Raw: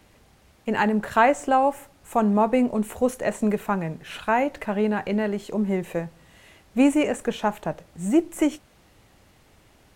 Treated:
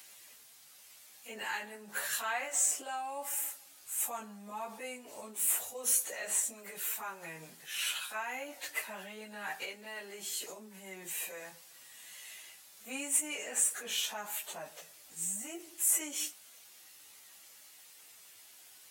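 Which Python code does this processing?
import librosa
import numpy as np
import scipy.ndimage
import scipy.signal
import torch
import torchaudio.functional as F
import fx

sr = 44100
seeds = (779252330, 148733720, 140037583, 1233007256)

p1 = fx.over_compress(x, sr, threshold_db=-31.0, ratio=-1.0)
p2 = x + (p1 * librosa.db_to_amplitude(2.0))
p3 = np.diff(p2, prepend=0.0)
y = fx.stretch_vocoder_free(p3, sr, factor=1.9)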